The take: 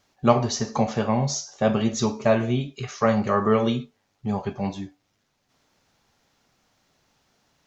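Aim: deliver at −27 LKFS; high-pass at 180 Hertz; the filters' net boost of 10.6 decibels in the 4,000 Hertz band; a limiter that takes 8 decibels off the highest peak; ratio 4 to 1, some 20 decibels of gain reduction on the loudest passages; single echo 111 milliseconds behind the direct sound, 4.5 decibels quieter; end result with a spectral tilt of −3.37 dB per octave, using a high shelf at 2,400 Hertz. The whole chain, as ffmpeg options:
ffmpeg -i in.wav -af "highpass=180,highshelf=frequency=2400:gain=7,equalizer=frequency=4000:width_type=o:gain=7,acompressor=threshold=-36dB:ratio=4,alimiter=level_in=4.5dB:limit=-24dB:level=0:latency=1,volume=-4.5dB,aecho=1:1:111:0.596,volume=11dB" out.wav

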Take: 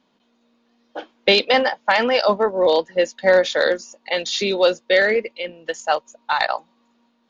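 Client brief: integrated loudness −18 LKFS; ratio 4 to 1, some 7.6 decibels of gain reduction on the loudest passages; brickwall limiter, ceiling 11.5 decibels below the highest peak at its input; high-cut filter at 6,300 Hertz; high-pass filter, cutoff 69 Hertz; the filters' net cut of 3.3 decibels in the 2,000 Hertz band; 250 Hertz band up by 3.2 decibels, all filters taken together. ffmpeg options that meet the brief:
ffmpeg -i in.wav -af "highpass=69,lowpass=6300,equalizer=frequency=250:width_type=o:gain=4.5,equalizer=frequency=2000:width_type=o:gain=-4,acompressor=threshold=-19dB:ratio=4,volume=11dB,alimiter=limit=-7.5dB:level=0:latency=1" out.wav

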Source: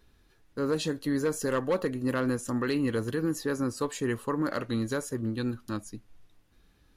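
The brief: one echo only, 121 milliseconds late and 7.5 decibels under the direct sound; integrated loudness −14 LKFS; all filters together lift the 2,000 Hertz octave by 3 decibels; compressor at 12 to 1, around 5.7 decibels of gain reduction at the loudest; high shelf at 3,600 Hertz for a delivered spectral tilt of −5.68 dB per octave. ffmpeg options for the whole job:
ffmpeg -i in.wav -af "equalizer=frequency=2000:width_type=o:gain=5,highshelf=frequency=3600:gain=-4.5,acompressor=threshold=-29dB:ratio=12,aecho=1:1:121:0.422,volume=20dB" out.wav

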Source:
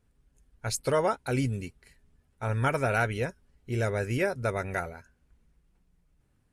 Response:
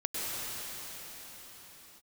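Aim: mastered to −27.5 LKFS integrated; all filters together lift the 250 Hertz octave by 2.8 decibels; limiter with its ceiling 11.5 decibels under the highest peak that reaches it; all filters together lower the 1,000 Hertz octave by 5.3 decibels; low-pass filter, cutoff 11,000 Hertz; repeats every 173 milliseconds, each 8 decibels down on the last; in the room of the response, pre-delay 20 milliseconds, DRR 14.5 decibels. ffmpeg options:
-filter_complex "[0:a]lowpass=11000,equalizer=frequency=250:width_type=o:gain=4,equalizer=frequency=1000:width_type=o:gain=-8.5,alimiter=level_in=2dB:limit=-24dB:level=0:latency=1,volume=-2dB,aecho=1:1:173|346|519|692|865:0.398|0.159|0.0637|0.0255|0.0102,asplit=2[link_01][link_02];[1:a]atrim=start_sample=2205,adelay=20[link_03];[link_02][link_03]afir=irnorm=-1:irlink=0,volume=-22dB[link_04];[link_01][link_04]amix=inputs=2:normalize=0,volume=8.5dB"

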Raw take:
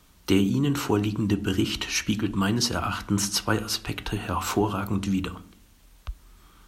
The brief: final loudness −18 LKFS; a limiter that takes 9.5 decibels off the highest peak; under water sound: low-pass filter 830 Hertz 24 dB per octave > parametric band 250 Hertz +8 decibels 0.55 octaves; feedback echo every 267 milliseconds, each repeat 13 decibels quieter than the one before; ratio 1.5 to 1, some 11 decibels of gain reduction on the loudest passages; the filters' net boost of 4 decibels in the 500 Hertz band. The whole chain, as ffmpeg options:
ffmpeg -i in.wav -af "equalizer=frequency=500:width_type=o:gain=4,acompressor=threshold=-47dB:ratio=1.5,alimiter=level_in=3dB:limit=-24dB:level=0:latency=1,volume=-3dB,lowpass=frequency=830:width=0.5412,lowpass=frequency=830:width=1.3066,equalizer=frequency=250:width_type=o:width=0.55:gain=8,aecho=1:1:267|534|801:0.224|0.0493|0.0108,volume=17.5dB" out.wav

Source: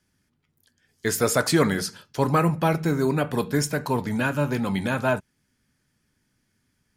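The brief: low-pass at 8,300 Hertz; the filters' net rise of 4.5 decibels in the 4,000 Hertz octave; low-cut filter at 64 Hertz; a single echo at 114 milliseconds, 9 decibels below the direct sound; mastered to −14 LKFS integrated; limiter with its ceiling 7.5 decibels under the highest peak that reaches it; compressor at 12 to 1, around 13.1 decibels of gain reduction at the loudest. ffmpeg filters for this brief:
ffmpeg -i in.wav -af "highpass=64,lowpass=8300,equalizer=frequency=4000:width_type=o:gain=6,acompressor=threshold=-28dB:ratio=12,alimiter=limit=-22.5dB:level=0:latency=1,aecho=1:1:114:0.355,volume=20dB" out.wav

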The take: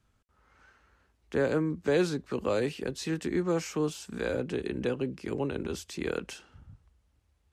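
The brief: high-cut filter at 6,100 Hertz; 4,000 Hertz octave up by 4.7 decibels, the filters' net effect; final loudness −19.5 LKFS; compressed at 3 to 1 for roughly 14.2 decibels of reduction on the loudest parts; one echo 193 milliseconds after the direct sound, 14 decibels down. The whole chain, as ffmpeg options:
ffmpeg -i in.wav -af "lowpass=6100,equalizer=frequency=4000:width_type=o:gain=6.5,acompressor=threshold=-41dB:ratio=3,aecho=1:1:193:0.2,volume=22.5dB" out.wav

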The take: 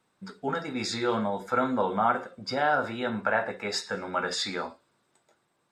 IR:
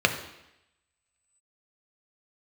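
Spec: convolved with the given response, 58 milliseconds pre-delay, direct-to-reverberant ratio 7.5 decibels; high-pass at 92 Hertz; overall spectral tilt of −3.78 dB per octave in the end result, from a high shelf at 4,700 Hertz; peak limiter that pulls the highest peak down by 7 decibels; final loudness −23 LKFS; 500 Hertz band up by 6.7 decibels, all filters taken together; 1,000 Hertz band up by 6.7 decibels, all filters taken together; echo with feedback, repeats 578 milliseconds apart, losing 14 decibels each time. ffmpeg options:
-filter_complex "[0:a]highpass=92,equalizer=frequency=500:width_type=o:gain=6,equalizer=frequency=1000:width_type=o:gain=7,highshelf=frequency=4700:gain=3.5,alimiter=limit=-12dB:level=0:latency=1,aecho=1:1:578|1156:0.2|0.0399,asplit=2[link_01][link_02];[1:a]atrim=start_sample=2205,adelay=58[link_03];[link_02][link_03]afir=irnorm=-1:irlink=0,volume=-23.5dB[link_04];[link_01][link_04]amix=inputs=2:normalize=0,volume=2dB"

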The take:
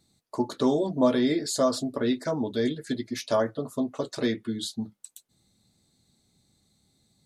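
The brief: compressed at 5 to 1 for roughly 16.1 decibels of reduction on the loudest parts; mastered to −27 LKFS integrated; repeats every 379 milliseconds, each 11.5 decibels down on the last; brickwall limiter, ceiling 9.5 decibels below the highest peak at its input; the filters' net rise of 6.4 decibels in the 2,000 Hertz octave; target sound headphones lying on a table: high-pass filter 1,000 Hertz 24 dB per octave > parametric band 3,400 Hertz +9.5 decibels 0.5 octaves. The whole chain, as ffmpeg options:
ffmpeg -i in.wav -af "equalizer=frequency=2000:width_type=o:gain=6.5,acompressor=threshold=-36dB:ratio=5,alimiter=level_in=6.5dB:limit=-24dB:level=0:latency=1,volume=-6.5dB,highpass=frequency=1000:width=0.5412,highpass=frequency=1000:width=1.3066,equalizer=frequency=3400:width_type=o:width=0.5:gain=9.5,aecho=1:1:379|758|1137:0.266|0.0718|0.0194,volume=16dB" out.wav

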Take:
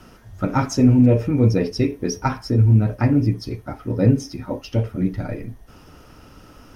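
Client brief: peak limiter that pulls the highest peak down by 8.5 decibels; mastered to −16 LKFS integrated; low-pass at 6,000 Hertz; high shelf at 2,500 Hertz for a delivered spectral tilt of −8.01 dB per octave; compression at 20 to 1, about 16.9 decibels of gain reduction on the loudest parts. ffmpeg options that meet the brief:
ffmpeg -i in.wav -af "lowpass=6000,highshelf=frequency=2500:gain=-5,acompressor=threshold=-26dB:ratio=20,volume=18dB,alimiter=limit=-5dB:level=0:latency=1" out.wav

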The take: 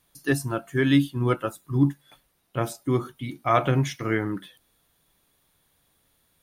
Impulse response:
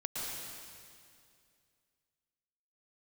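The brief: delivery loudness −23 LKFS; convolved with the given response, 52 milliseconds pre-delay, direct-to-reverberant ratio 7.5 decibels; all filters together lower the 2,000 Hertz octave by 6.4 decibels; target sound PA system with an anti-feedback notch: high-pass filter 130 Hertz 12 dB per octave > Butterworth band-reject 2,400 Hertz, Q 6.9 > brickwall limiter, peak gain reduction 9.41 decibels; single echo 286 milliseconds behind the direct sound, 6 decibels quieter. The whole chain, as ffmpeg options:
-filter_complex "[0:a]equalizer=frequency=2000:width_type=o:gain=-7.5,aecho=1:1:286:0.501,asplit=2[link_01][link_02];[1:a]atrim=start_sample=2205,adelay=52[link_03];[link_02][link_03]afir=irnorm=-1:irlink=0,volume=-10.5dB[link_04];[link_01][link_04]amix=inputs=2:normalize=0,highpass=130,asuperstop=centerf=2400:order=8:qfactor=6.9,volume=5.5dB,alimiter=limit=-11.5dB:level=0:latency=1"

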